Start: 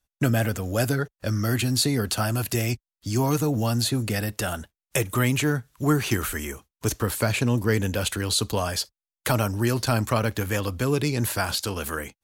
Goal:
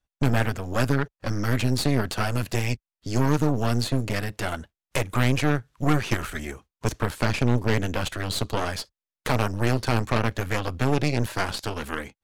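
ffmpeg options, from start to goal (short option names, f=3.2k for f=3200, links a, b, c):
-af "aemphasis=mode=reproduction:type=50fm,aeval=exprs='0.355*(cos(1*acos(clip(val(0)/0.355,-1,1)))-cos(1*PI/2))+0.0794*(cos(6*acos(clip(val(0)/0.355,-1,1)))-cos(6*PI/2))':c=same,volume=-1.5dB"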